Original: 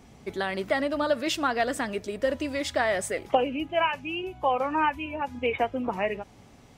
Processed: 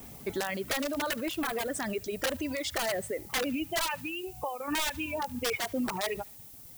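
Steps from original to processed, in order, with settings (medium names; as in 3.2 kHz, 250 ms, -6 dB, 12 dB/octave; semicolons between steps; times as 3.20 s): 2.94–3.44 s: treble shelf 2.2 kHz -11 dB; 4.01–4.68 s: compression 6:1, threshold -36 dBFS, peak gain reduction 15.5 dB; integer overflow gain 19 dB; 1.11–1.75 s: peaking EQ 5.6 kHz -9 dB 1.3 oct; on a send: thinning echo 73 ms, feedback 61%, high-pass 980 Hz, level -17.5 dB; on the sum: peak limiter -26 dBFS, peak gain reduction 9 dB; reverb removal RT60 1.9 s; gate with hold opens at -51 dBFS; added noise violet -53 dBFS; trim +3 dB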